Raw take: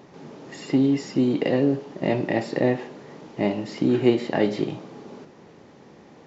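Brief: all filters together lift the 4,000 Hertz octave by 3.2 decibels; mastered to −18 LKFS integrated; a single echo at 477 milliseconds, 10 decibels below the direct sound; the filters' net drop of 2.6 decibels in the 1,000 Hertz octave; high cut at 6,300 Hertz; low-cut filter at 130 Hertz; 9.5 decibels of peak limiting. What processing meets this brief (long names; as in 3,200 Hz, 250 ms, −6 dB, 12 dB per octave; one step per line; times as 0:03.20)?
high-pass filter 130 Hz
low-pass filter 6,300 Hz
parametric band 1,000 Hz −4 dB
parametric band 4,000 Hz +5.5 dB
brickwall limiter −15.5 dBFS
single-tap delay 477 ms −10 dB
level +9 dB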